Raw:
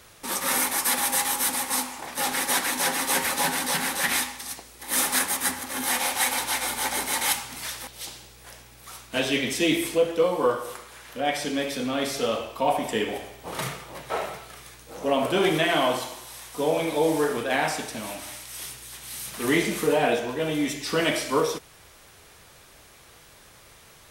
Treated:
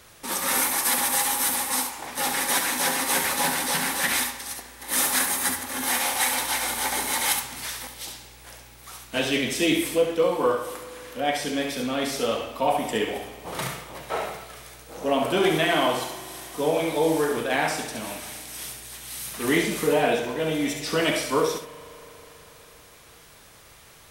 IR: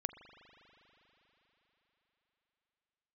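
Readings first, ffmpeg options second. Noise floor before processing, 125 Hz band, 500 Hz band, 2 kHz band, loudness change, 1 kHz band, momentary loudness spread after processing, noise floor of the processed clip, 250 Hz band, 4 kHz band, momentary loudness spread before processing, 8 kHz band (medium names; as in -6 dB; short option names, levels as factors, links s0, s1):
-52 dBFS, +0.5 dB, +0.5 dB, +0.5 dB, +1.0 dB, +0.5 dB, 14 LU, -51 dBFS, +0.5 dB, +0.5 dB, 14 LU, +1.0 dB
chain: -filter_complex "[0:a]asplit=2[s0][s1];[1:a]atrim=start_sample=2205,highshelf=f=11000:g=11,adelay=69[s2];[s1][s2]afir=irnorm=-1:irlink=0,volume=0.398[s3];[s0][s3]amix=inputs=2:normalize=0"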